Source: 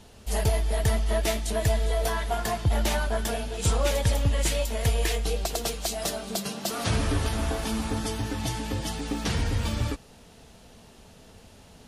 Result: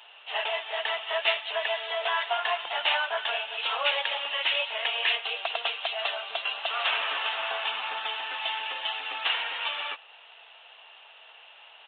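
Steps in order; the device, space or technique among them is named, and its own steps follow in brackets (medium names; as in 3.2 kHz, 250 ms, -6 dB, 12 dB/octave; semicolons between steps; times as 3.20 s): musical greeting card (resampled via 8 kHz; high-pass 770 Hz 24 dB/octave; peaking EQ 2.8 kHz +10 dB 0.31 oct); trim +4.5 dB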